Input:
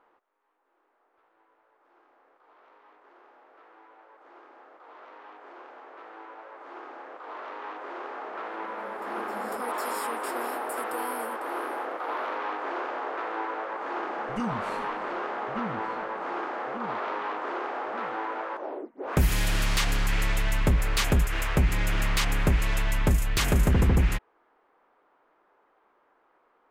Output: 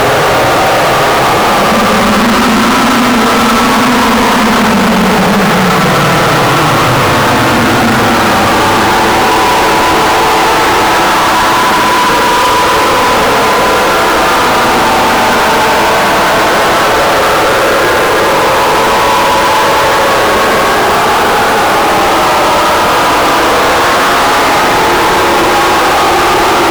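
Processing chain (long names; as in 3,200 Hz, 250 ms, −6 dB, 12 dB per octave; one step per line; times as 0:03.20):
extreme stretch with random phases 31×, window 0.05 s, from 0:15.50
fuzz pedal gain 48 dB, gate −50 dBFS
level +6.5 dB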